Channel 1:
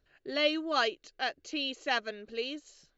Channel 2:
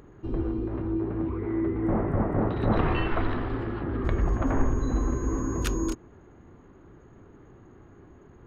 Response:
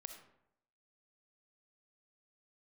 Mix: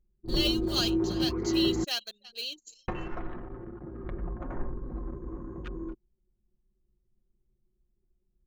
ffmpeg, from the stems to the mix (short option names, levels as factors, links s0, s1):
-filter_complex "[0:a]bandreject=f=45.31:t=h:w=4,bandreject=f=90.62:t=h:w=4,bandreject=f=135.93:t=h:w=4,bandreject=f=181.24:t=h:w=4,bandreject=f=226.55:t=h:w=4,bandreject=f=271.86:t=h:w=4,bandreject=f=317.17:t=h:w=4,bandreject=f=362.48:t=h:w=4,bandreject=f=407.79:t=h:w=4,acrusher=bits=7:mode=log:mix=0:aa=0.000001,aexciter=amount=11:drive=4.8:freq=3100,volume=0.299,asplit=3[s0][s1][s2];[s1]volume=0.158[s3];[1:a]acrossover=split=3900[s4][s5];[s5]acompressor=threshold=0.002:ratio=4:attack=1:release=60[s6];[s4][s6]amix=inputs=2:normalize=0,volume=0.891,asplit=3[s7][s8][s9];[s7]atrim=end=1.84,asetpts=PTS-STARTPTS,afade=t=out:st=1.836:d=0.004:c=hsin[s10];[s8]atrim=start=1.84:end=2.88,asetpts=PTS-STARTPTS,volume=0[s11];[s9]atrim=start=2.88,asetpts=PTS-STARTPTS,afade=t=in:d=0.004:c=hsin[s12];[s10][s11][s12]concat=n=3:v=0:a=1[s13];[s2]apad=whole_len=373503[s14];[s13][s14]sidechaingate=range=0.316:threshold=0.002:ratio=16:detection=peak[s15];[s3]aecho=0:1:334:1[s16];[s0][s15][s16]amix=inputs=3:normalize=0,anlmdn=0.158,highshelf=f=4200:g=-5,aecho=1:1:5.6:0.51"